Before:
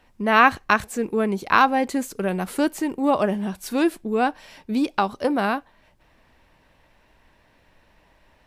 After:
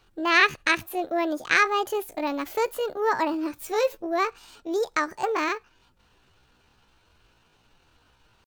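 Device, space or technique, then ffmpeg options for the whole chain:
chipmunk voice: -filter_complex "[0:a]asettb=1/sr,asplit=3[link_01][link_02][link_03];[link_01]atrim=end=3.334[link_04];[link_02]atrim=start=3.33:end=4.07,asetpts=PTS-STARTPTS,afade=type=in:duration=0.004:curve=qsin,afade=type=out:start_time=0.736:duration=0.004:curve=qsin,asplit=2[link_05][link_06];[link_06]adelay=14,volume=-8dB[link_07];[link_05][link_07]amix=inputs=2:normalize=0,atrim=end_sample=32634[link_08];[link_03]atrim=start=4.066[link_09];[link_04][link_08]acrossfade=duration=0.004:curve1=hsin:curve2=qsin[link_10];[link_10][link_09]acrossfade=duration=0.004:curve1=qsin:curve2=hsin,asetrate=68011,aresample=44100,atempo=0.64842,volume=-3.5dB"

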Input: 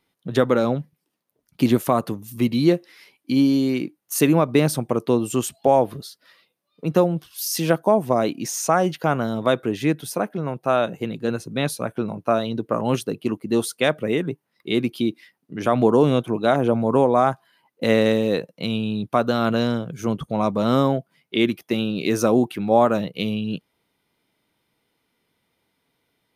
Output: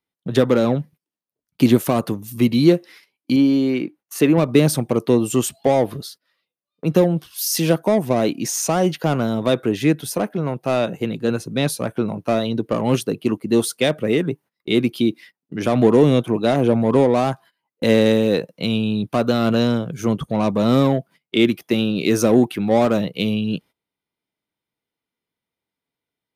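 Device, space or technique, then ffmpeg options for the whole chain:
one-band saturation: -filter_complex "[0:a]acrossover=split=550|2400[link_01][link_02][link_03];[link_02]asoftclip=type=tanh:threshold=-27.5dB[link_04];[link_01][link_04][link_03]amix=inputs=3:normalize=0,agate=range=-19dB:threshold=-45dB:ratio=16:detection=peak,asettb=1/sr,asplit=3[link_05][link_06][link_07];[link_05]atrim=end=3.364[link_08];[link_06]atrim=start=3.36:end=4.38,asetpts=PTS-STARTPTS,afade=type=in:duration=0.004:curve=qsin,afade=type=out:start_time=1.016:duration=0.004:curve=qsin,bass=frequency=250:gain=-5,treble=frequency=4000:gain=-11[link_09];[link_07]atrim=start=4.376[link_10];[link_08][link_09]acrossfade=duration=0.004:curve1=hsin:curve2=qsin[link_11];[link_11][link_10]acrossfade=duration=0.004:curve1=qsin:curve2=hsin,volume=4dB"

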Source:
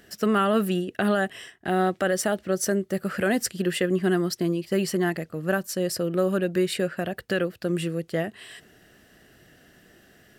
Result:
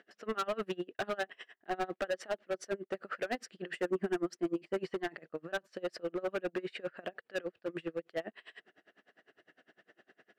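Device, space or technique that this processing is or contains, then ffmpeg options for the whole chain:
helicopter radio: -filter_complex "[0:a]highpass=380,lowpass=2600,aeval=exprs='val(0)*pow(10,-30*(0.5-0.5*cos(2*PI*9.9*n/s))/20)':channel_layout=same,asoftclip=type=hard:threshold=-29dB,asettb=1/sr,asplit=3[link_01][link_02][link_03];[link_01]atrim=end=3.734[link_04];[link_02]atrim=start=3.73:end=4.84,asetpts=PTS-STARTPTS,afade=type=in:duration=0.004:curve=qsin,afade=type=out:start_time=1.106:duration=0.004:curve=qsin,equalizer=frequency=250:width_type=o:width=1:gain=7,equalizer=frequency=4000:width_type=o:width=1:gain=-6,equalizer=frequency=8000:width_type=o:width=1:gain=6[link_05];[link_03]atrim=start=4.836[link_06];[link_04][link_05]acrossfade=duration=0.004:curve1=hsin:curve2=qsin[link_07];[link_07][link_06]acrossfade=duration=0.004:curve1=qsin:curve2=hsin"

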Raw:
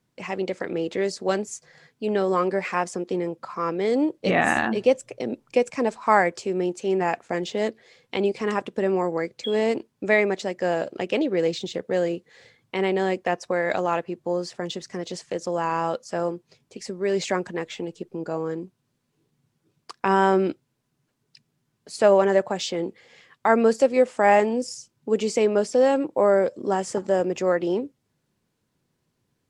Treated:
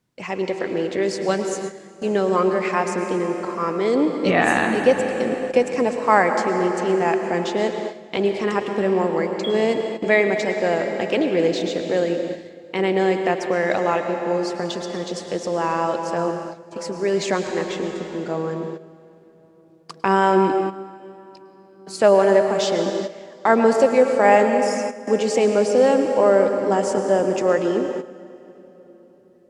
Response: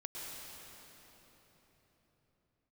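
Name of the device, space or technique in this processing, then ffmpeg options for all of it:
keyed gated reverb: -filter_complex "[0:a]asplit=3[link_01][link_02][link_03];[1:a]atrim=start_sample=2205[link_04];[link_02][link_04]afir=irnorm=-1:irlink=0[link_05];[link_03]apad=whole_len=1300733[link_06];[link_05][link_06]sidechaingate=range=-11dB:threshold=-49dB:ratio=16:detection=peak,volume=1dB[link_07];[link_01][link_07]amix=inputs=2:normalize=0,volume=-1.5dB"

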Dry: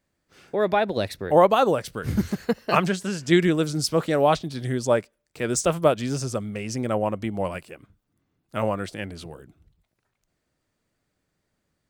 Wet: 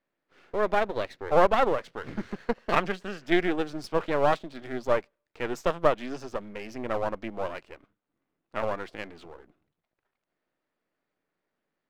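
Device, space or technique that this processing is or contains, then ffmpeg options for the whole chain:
crystal radio: -af "highpass=280,lowpass=2600,aeval=exprs='if(lt(val(0),0),0.251*val(0),val(0))':channel_layout=same"

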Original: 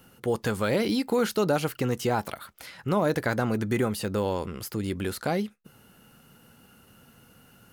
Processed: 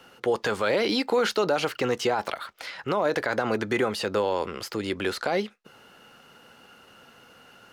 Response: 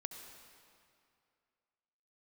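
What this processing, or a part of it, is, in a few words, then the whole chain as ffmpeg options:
DJ mixer with the lows and highs turned down: -filter_complex "[0:a]acrossover=split=350 6300:gain=0.178 1 0.141[link_01][link_02][link_03];[link_01][link_02][link_03]amix=inputs=3:normalize=0,alimiter=limit=-22.5dB:level=0:latency=1:release=27,volume=7.5dB"

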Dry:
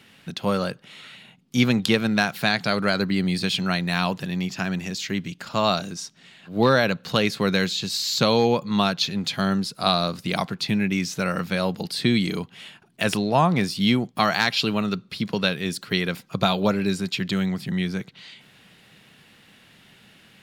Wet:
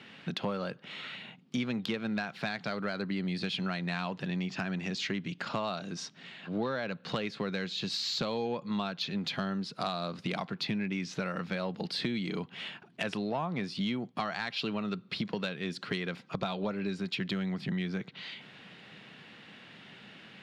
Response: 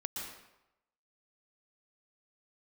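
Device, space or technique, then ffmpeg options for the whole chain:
AM radio: -af "highpass=140,lowpass=3800,acompressor=threshold=-33dB:ratio=6,asoftclip=type=tanh:threshold=-22dB,volume=2.5dB"

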